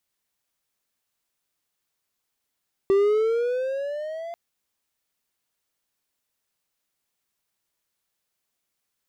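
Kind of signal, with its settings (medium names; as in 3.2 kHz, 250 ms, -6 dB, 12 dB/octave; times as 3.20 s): gliding synth tone triangle, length 1.44 s, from 387 Hz, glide +10 st, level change -17 dB, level -13 dB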